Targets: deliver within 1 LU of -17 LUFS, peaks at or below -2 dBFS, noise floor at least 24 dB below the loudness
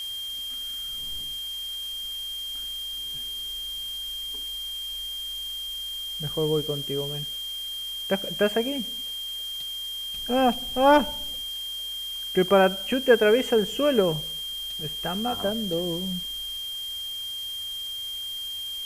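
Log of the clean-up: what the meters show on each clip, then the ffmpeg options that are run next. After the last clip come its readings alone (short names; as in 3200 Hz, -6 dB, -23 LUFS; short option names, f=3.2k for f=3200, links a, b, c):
steady tone 3200 Hz; tone level -31 dBFS; noise floor -34 dBFS; noise floor target -51 dBFS; loudness -26.5 LUFS; peak -5.0 dBFS; loudness target -17.0 LUFS
-> -af "bandreject=f=3.2k:w=30"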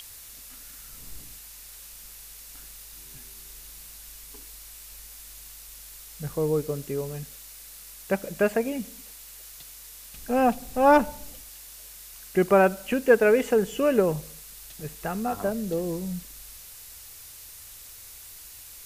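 steady tone none; noise floor -45 dBFS; noise floor target -49 dBFS
-> -af "afftdn=nr=6:nf=-45"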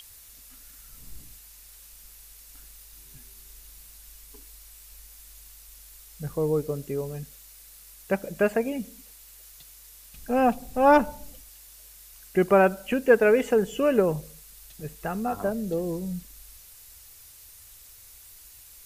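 noise floor -50 dBFS; loudness -25.0 LUFS; peak -5.5 dBFS; loudness target -17.0 LUFS
-> -af "volume=8dB,alimiter=limit=-2dB:level=0:latency=1"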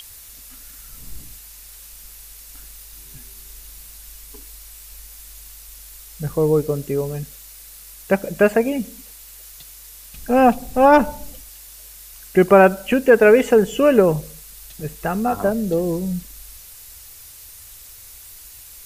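loudness -17.5 LUFS; peak -2.0 dBFS; noise floor -42 dBFS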